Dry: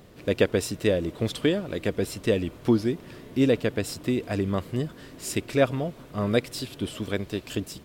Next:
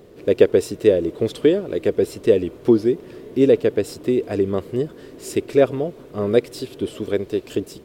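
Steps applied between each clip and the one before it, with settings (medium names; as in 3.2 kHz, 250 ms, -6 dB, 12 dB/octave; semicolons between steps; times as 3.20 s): peaking EQ 410 Hz +13 dB 0.92 oct; trim -1.5 dB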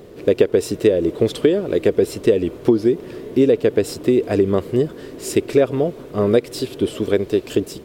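compression 6:1, threshold -16 dBFS, peak gain reduction 9.5 dB; trim +5.5 dB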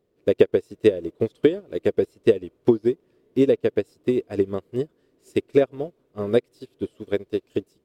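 upward expansion 2.5:1, over -29 dBFS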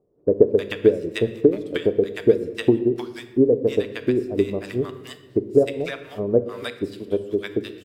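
bands offset in time lows, highs 310 ms, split 860 Hz; simulated room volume 420 m³, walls mixed, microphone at 0.4 m; tape noise reduction on one side only encoder only; trim +1.5 dB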